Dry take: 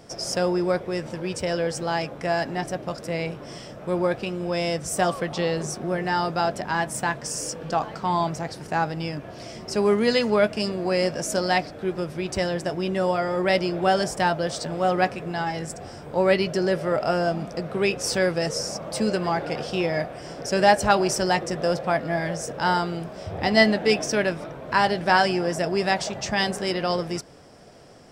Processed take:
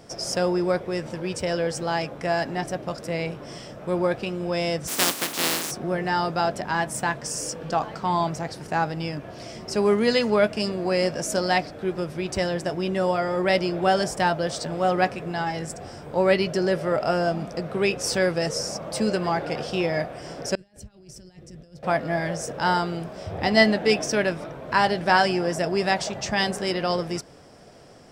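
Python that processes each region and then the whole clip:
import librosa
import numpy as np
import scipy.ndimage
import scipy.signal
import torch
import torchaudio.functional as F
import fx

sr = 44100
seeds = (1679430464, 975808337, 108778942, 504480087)

y = fx.spec_flatten(x, sr, power=0.19, at=(4.87, 5.7), fade=0.02)
y = fx.highpass(y, sr, hz=160.0, slope=12, at=(4.87, 5.7), fade=0.02)
y = fx.peak_eq(y, sr, hz=280.0, db=7.0, octaves=0.63, at=(4.87, 5.7), fade=0.02)
y = fx.chain(y, sr, fx.over_compress(threshold_db=-28.0, ratio=-1.0),
    fx.tone_stack(knobs='10-0-1'), at=(20.55, 21.83))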